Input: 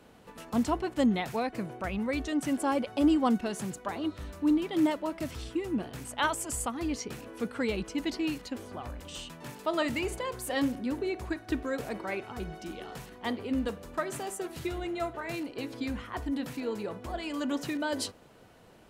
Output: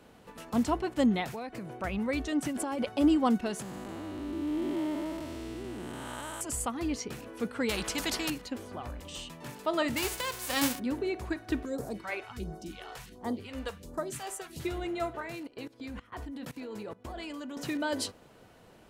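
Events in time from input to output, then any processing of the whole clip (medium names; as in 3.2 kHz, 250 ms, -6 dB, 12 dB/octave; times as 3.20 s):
1.33–1.82 s: compression 4:1, threshold -36 dBFS
2.45–2.89 s: compressor with a negative ratio -32 dBFS
3.62–6.41 s: spectral blur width 476 ms
7.69–8.30 s: spectrum-flattening compressor 2:1
9.00–9.43 s: band-stop 1.5 kHz, Q 7.2
9.96–10.78 s: formants flattened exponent 0.3
11.65–14.60 s: phase shifter stages 2, 1.4 Hz, lowest notch 160–2700 Hz
15.22–17.57 s: level held to a coarse grid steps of 20 dB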